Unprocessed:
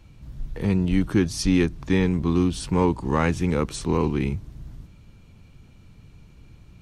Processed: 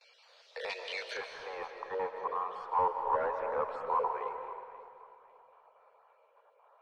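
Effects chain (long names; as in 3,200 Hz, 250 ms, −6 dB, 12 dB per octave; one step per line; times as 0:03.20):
time-frequency cells dropped at random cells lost 28%
noise gate with hold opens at −46 dBFS
Butterworth high-pass 480 Hz 72 dB per octave
soft clipping −31 dBFS, distortion −7 dB
low-pass with resonance 4,600 Hz, resonance Q 2.7, from 0:01.17 1,000 Hz
delay that swaps between a low-pass and a high-pass 268 ms, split 800 Hz, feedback 59%, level −12.5 dB
comb and all-pass reverb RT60 1.8 s, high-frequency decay 0.9×, pre-delay 110 ms, DRR 5.5 dB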